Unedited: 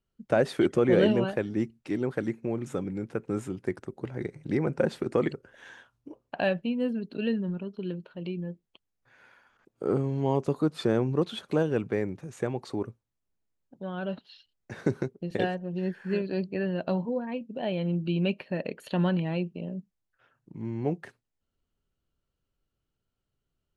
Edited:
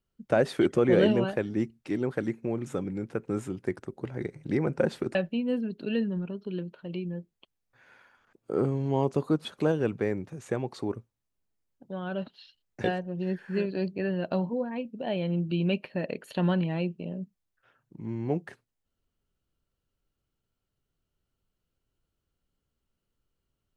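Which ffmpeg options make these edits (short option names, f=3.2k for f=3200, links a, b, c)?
-filter_complex "[0:a]asplit=4[a][b][c][d];[a]atrim=end=5.152[e];[b]atrim=start=6.468:end=10.772[f];[c]atrim=start=11.358:end=14.752[g];[d]atrim=start=15.398[h];[e][f]acrossfade=d=0.004:c1=hsin:c2=hsin[i];[i][g]acrossfade=d=0.004:c1=hsin:c2=hsin[j];[j][h]acrossfade=d=0.004:c1=hsin:c2=hsin"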